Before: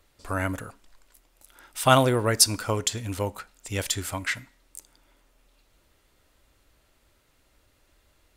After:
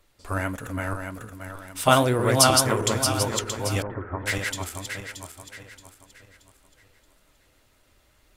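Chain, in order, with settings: backward echo that repeats 313 ms, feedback 60%, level -2 dB; flange 1.8 Hz, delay 4.7 ms, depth 8.3 ms, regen +65%; 3.82–4.26 s: steep low-pass 1.7 kHz 36 dB/octave; trim +4 dB

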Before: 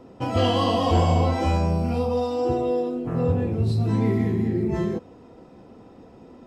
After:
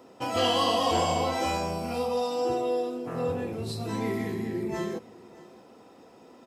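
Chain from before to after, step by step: high-pass 580 Hz 6 dB/octave; treble shelf 6.9 kHz +11 dB; on a send: delay 608 ms -21 dB

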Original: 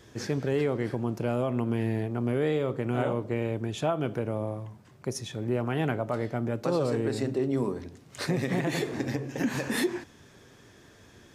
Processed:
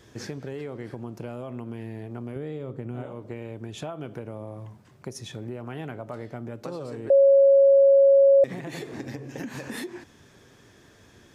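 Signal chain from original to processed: 2.36–3.06 s: bass shelf 430 Hz +10 dB; compression 6:1, threshold -32 dBFS, peak gain reduction 14.5 dB; 7.10–8.44 s: bleep 551 Hz -12.5 dBFS

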